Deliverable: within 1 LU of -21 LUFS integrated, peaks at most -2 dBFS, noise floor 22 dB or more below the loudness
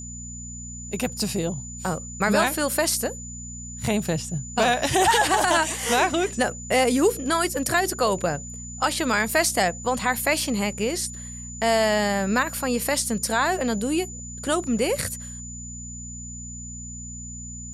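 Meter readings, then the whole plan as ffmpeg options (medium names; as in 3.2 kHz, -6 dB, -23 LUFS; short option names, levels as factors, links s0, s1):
hum 60 Hz; highest harmonic 240 Hz; hum level -36 dBFS; steady tone 7 kHz; tone level -37 dBFS; loudness -23.5 LUFS; peak level -7.5 dBFS; loudness target -21.0 LUFS
-> -af "bandreject=f=60:t=h:w=4,bandreject=f=120:t=h:w=4,bandreject=f=180:t=h:w=4,bandreject=f=240:t=h:w=4"
-af "bandreject=f=7000:w=30"
-af "volume=1.33"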